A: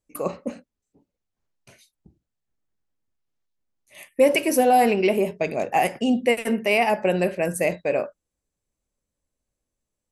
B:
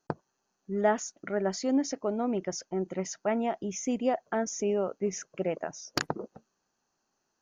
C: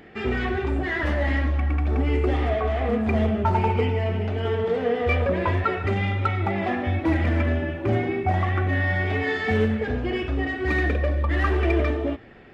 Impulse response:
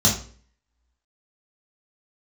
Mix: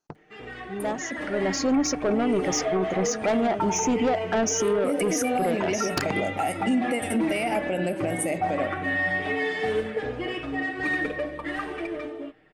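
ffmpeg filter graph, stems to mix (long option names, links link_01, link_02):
-filter_complex "[0:a]equalizer=frequency=280:width_type=o:width=0.48:gain=15,aecho=1:1:1.4:0.37,adelay=650,volume=-14dB[link_01];[1:a]dynaudnorm=framelen=230:gausssize=13:maxgain=7dB,asoftclip=type=tanh:threshold=-21.5dB,volume=-4.5dB[link_02];[2:a]equalizer=frequency=80:width=0.78:gain=-10,aecho=1:1:6.5:0.89,adelay=150,volume=-13dB[link_03];[link_01][link_03]amix=inputs=2:normalize=0,equalizer=frequency=8900:width_type=o:width=0.28:gain=13.5,alimiter=level_in=2dB:limit=-24dB:level=0:latency=1:release=101,volume=-2dB,volume=0dB[link_04];[link_02][link_04]amix=inputs=2:normalize=0,dynaudnorm=framelen=150:gausssize=17:maxgain=9.5dB,alimiter=limit=-16.5dB:level=0:latency=1:release=26"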